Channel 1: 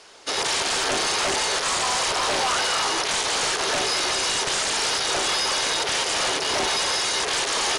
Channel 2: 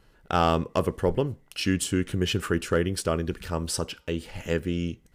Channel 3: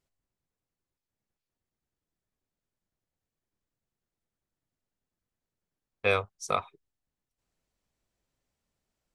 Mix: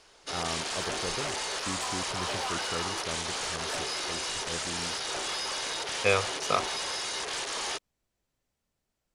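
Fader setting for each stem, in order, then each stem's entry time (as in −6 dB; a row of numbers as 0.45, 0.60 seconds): −10.0, −13.5, +1.0 decibels; 0.00, 0.00, 0.00 seconds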